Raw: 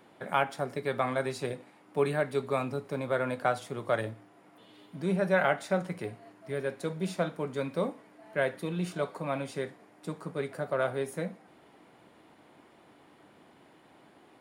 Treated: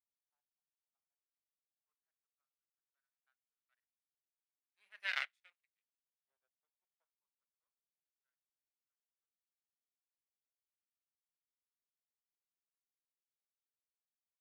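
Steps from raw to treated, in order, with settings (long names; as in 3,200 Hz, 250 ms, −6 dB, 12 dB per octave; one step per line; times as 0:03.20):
source passing by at 0:05.15, 18 m/s, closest 1.6 metres
power curve on the samples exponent 2
auto-filter high-pass saw up 0.17 Hz 710–2,600 Hz
level −2.5 dB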